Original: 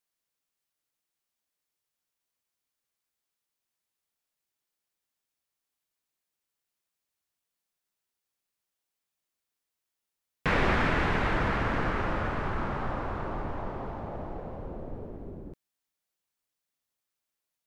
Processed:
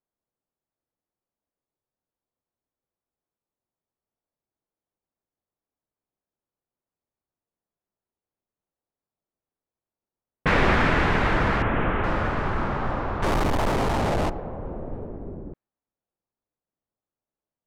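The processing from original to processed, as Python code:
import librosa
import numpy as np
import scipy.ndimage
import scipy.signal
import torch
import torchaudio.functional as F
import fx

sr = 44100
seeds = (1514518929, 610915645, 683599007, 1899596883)

y = fx.delta_mod(x, sr, bps=16000, step_db=-36.5, at=(11.62, 12.04))
y = fx.power_curve(y, sr, exponent=0.35, at=(13.22, 14.3))
y = fx.env_lowpass(y, sr, base_hz=760.0, full_db=-25.5)
y = y * librosa.db_to_amplitude(5.5)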